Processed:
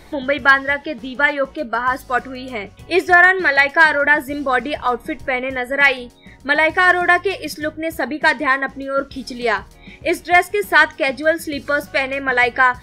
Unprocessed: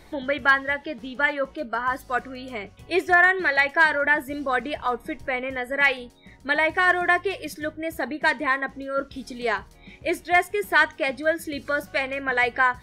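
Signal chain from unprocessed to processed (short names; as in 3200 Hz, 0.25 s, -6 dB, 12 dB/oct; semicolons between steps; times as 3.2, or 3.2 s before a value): dynamic EQ 5200 Hz, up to +7 dB, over -57 dBFS, Q 7.6; gain +6.5 dB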